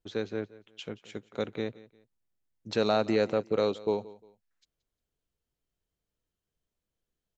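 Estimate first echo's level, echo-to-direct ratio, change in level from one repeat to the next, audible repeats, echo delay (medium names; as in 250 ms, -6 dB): -19.5 dB, -19.0 dB, -10.5 dB, 2, 176 ms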